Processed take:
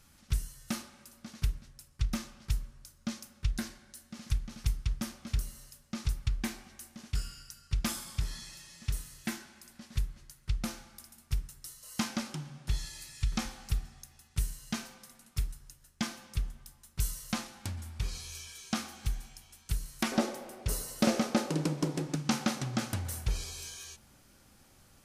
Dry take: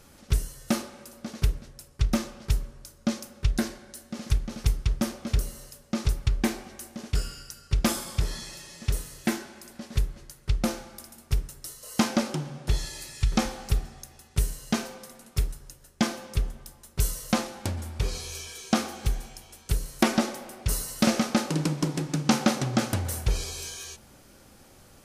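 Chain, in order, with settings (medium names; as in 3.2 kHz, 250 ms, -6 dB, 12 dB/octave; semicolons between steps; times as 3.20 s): peaking EQ 470 Hz -12 dB 1.4 oct, from 20.12 s +4.5 dB, from 22.15 s -6 dB; trim -6 dB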